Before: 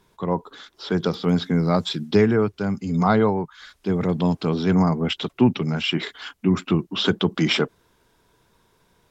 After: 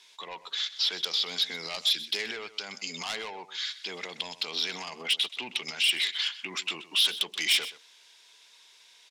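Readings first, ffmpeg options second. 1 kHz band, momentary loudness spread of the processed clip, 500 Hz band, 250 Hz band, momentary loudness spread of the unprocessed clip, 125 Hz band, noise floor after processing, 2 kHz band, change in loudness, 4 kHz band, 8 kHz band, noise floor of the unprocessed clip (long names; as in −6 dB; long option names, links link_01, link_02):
−14.5 dB, 12 LU, −20.5 dB, −28.5 dB, 8 LU, −34.0 dB, −58 dBFS, −1.5 dB, −6.5 dB, +3.5 dB, can't be measured, −64 dBFS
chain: -af "highpass=760,lowpass=5200,asoftclip=type=tanh:threshold=-23dB,alimiter=level_in=8dB:limit=-24dB:level=0:latency=1:release=77,volume=-8dB,aecho=1:1:127:0.168,aexciter=amount=6.6:drive=5:freq=2000,volume=-2dB"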